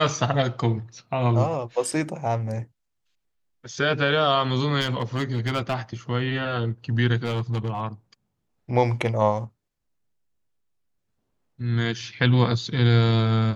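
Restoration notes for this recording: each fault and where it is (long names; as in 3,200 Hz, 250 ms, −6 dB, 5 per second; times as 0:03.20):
0:04.80–0:05.75: clipping −18.5 dBFS
0:07.24–0:07.82: clipping −21 dBFS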